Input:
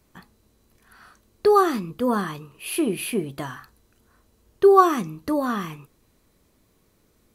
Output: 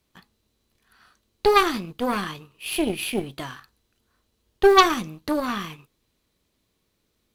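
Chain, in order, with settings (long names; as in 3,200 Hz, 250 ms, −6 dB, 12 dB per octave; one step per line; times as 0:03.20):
mu-law and A-law mismatch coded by A
harmonic generator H 6 −15 dB, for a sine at −3 dBFS
parametric band 3,500 Hz +8 dB 1.3 octaves
level −1.5 dB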